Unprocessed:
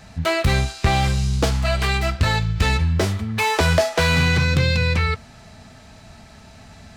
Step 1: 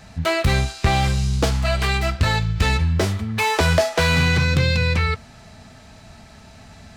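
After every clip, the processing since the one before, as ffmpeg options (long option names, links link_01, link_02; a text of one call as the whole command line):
ffmpeg -i in.wav -af anull out.wav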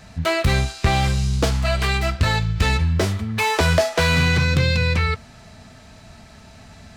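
ffmpeg -i in.wav -af "bandreject=frequency=820:width=25" out.wav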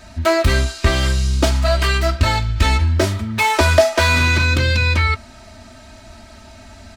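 ffmpeg -i in.wav -af "aecho=1:1:3.2:0.87,volume=1.5dB" out.wav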